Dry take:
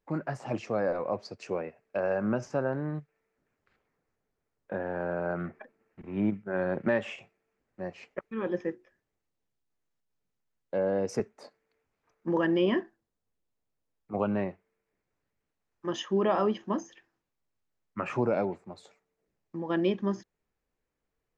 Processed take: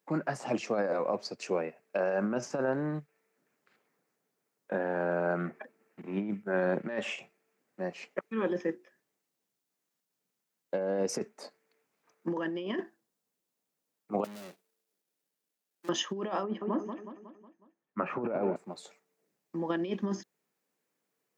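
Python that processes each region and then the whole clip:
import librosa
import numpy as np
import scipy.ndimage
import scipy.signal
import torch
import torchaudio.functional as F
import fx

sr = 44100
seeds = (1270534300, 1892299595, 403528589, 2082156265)

y = fx.chain(x, sr, fx.median_filter(points=41),
    fx.tilt_eq(slope=3.5),
    fx.tube_stage(drive_db=45.0, bias=0.35), at=(14.24, 15.89))
y = fx.chain(y, sr, fx.lowpass(hz=1600.0, slope=12),
    fx.echo_feedback(ms=183, feedback_pct=51, wet_db=-12.0), at=(16.43, 18.56))
y = fx.over_compress(y, sr, threshold_db=-29.0, ratio=-0.5)
y = scipy.signal.sosfilt(scipy.signal.butter(4, 160.0, 'highpass', fs=sr, output='sos'), y)
y = fx.high_shelf(y, sr, hz=4900.0, db=8.5)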